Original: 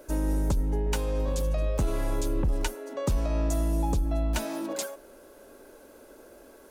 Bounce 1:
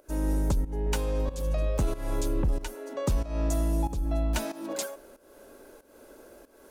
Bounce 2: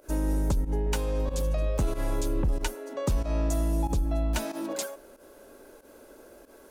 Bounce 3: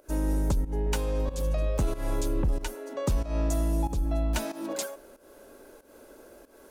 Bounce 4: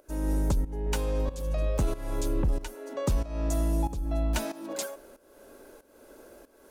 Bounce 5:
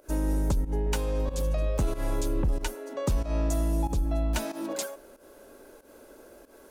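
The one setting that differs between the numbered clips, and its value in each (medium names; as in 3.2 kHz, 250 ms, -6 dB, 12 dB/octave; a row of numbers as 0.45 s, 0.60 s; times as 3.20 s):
volume shaper, release: 306 ms, 91 ms, 205 ms, 456 ms, 137 ms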